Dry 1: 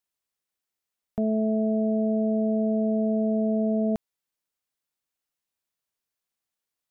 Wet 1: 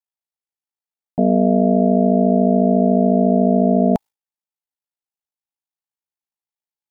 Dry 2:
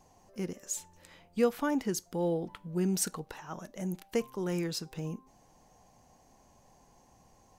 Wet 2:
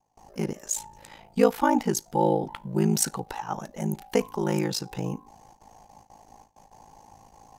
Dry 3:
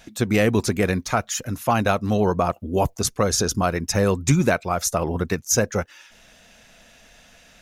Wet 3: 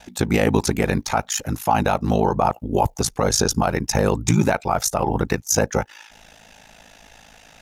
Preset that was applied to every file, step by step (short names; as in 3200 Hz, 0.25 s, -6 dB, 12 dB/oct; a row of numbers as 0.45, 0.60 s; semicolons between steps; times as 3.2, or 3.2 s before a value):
gate with hold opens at -52 dBFS; bell 840 Hz +12 dB 0.24 oct; limiter -11.5 dBFS; ring modulator 27 Hz; normalise peaks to -6 dBFS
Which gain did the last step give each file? +12.0, +9.5, +5.5 dB